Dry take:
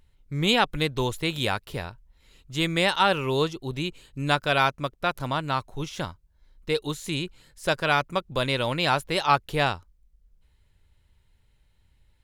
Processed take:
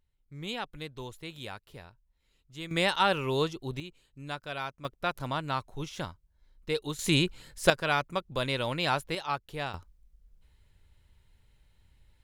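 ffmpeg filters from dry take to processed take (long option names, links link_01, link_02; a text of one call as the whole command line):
ffmpeg -i in.wav -af "asetnsamples=nb_out_samples=441:pad=0,asendcmd='2.71 volume volume -4dB;3.8 volume volume -14.5dB;4.85 volume volume -5dB;6.99 volume volume 4.5dB;7.7 volume volume -5dB;9.15 volume volume -11.5dB;9.74 volume volume 0.5dB',volume=-15dB" out.wav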